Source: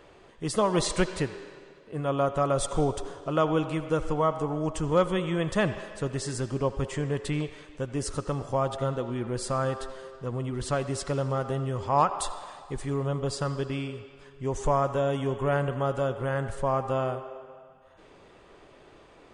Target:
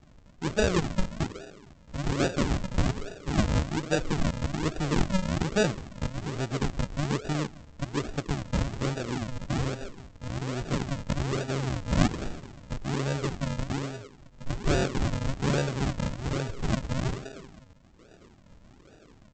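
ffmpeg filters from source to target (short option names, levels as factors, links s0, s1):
-af "bandreject=f=530:w=17,aresample=16000,acrusher=samples=29:mix=1:aa=0.000001:lfo=1:lforange=29:lforate=1.2,aresample=44100"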